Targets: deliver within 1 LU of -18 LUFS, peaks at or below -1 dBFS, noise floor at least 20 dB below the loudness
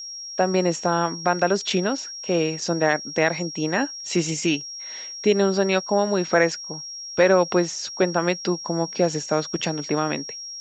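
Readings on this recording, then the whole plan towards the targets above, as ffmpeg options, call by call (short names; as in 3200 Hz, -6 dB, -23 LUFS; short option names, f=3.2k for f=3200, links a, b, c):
steady tone 5600 Hz; tone level -33 dBFS; loudness -23.0 LUFS; peak -4.5 dBFS; loudness target -18.0 LUFS
-> -af "bandreject=f=5.6k:w=30"
-af "volume=5dB,alimiter=limit=-1dB:level=0:latency=1"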